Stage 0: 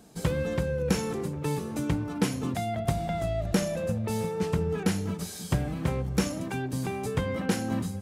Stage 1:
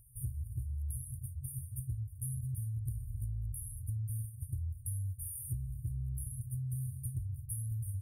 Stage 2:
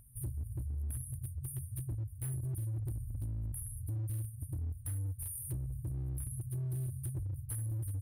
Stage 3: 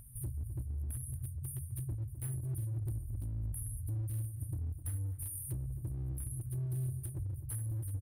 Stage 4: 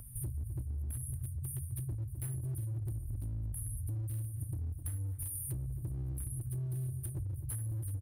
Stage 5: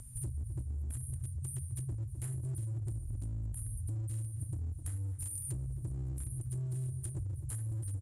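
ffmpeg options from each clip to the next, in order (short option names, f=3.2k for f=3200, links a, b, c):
-filter_complex "[0:a]afftfilt=real='re*(1-between(b*sr/4096,130,8900))':imag='im*(1-between(b*sr/4096,130,8900))':win_size=4096:overlap=0.75,asplit=2[a][b];[b]alimiter=level_in=5.5dB:limit=-24dB:level=0:latency=1:release=20,volume=-5.5dB,volume=0.5dB[c];[a][c]amix=inputs=2:normalize=0,acompressor=threshold=-32dB:ratio=6,volume=-2.5dB"
-af "equalizer=f=930:w=0.31:g=10.5,asoftclip=type=hard:threshold=-33.5dB,aeval=exprs='val(0)+0.000355*(sin(2*PI*50*n/s)+sin(2*PI*2*50*n/s)/2+sin(2*PI*3*50*n/s)/3+sin(2*PI*4*50*n/s)/4+sin(2*PI*5*50*n/s)/5)':c=same"
-filter_complex "[0:a]alimiter=level_in=15.5dB:limit=-24dB:level=0:latency=1:release=300,volume=-15.5dB,asplit=2[a][b];[b]adelay=257,lowpass=f=1.1k:p=1,volume=-11.5dB,asplit=2[c][d];[d]adelay=257,lowpass=f=1.1k:p=1,volume=0.45,asplit=2[e][f];[f]adelay=257,lowpass=f=1.1k:p=1,volume=0.45,asplit=2[g][h];[h]adelay=257,lowpass=f=1.1k:p=1,volume=0.45,asplit=2[i][j];[j]adelay=257,lowpass=f=1.1k:p=1,volume=0.45[k];[c][e][g][i][k]amix=inputs=5:normalize=0[l];[a][l]amix=inputs=2:normalize=0,volume=5.5dB"
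-filter_complex "[0:a]acrossover=split=380|660|4500[a][b][c][d];[c]acrusher=bits=2:mode=log:mix=0:aa=0.000001[e];[a][b][e][d]amix=inputs=4:normalize=0,acompressor=threshold=-40dB:ratio=4,volume=4.5dB"
-af "lowpass=f=7.5k:t=q:w=9.1"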